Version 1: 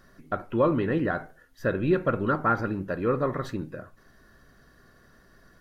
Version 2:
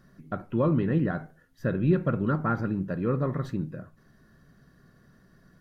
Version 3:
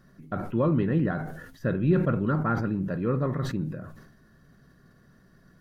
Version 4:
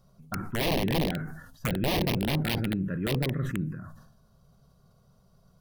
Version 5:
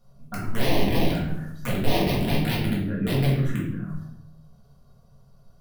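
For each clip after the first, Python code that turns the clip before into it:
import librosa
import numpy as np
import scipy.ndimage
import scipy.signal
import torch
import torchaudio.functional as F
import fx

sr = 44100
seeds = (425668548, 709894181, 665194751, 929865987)

y1 = fx.peak_eq(x, sr, hz=160.0, db=12.5, octaves=1.4)
y1 = y1 * 10.0 ** (-6.0 / 20.0)
y2 = fx.sustainer(y1, sr, db_per_s=56.0)
y3 = (np.mod(10.0 ** (18.5 / 20.0) * y2 + 1.0, 2.0) - 1.0) / 10.0 ** (18.5 / 20.0)
y3 = fx.env_phaser(y3, sr, low_hz=290.0, high_hz=1400.0, full_db=-21.5)
y4 = fx.room_shoebox(y3, sr, seeds[0], volume_m3=180.0, walls='mixed', distance_m=1.8)
y4 = y4 * 10.0 ** (-4.0 / 20.0)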